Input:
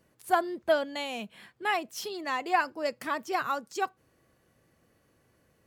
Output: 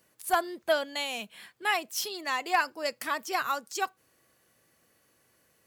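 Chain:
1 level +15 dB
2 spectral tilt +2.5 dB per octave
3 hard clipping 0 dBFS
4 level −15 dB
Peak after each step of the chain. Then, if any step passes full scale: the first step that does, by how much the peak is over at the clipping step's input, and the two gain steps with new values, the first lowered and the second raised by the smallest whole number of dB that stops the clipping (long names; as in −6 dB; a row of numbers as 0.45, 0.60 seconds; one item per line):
+2.0, +4.5, 0.0, −15.0 dBFS
step 1, 4.5 dB
step 1 +10 dB, step 4 −10 dB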